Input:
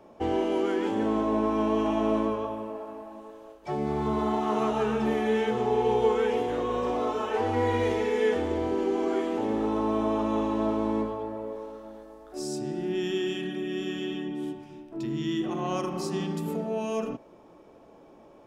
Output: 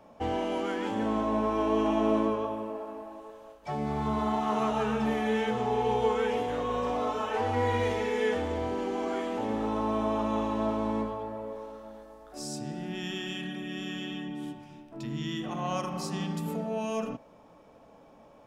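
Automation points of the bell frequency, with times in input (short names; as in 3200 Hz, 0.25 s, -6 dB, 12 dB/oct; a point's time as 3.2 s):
bell -14 dB 0.34 oct
1.39 s 370 Hz
2.14 s 71 Hz
2.72 s 71 Hz
3.44 s 360 Hz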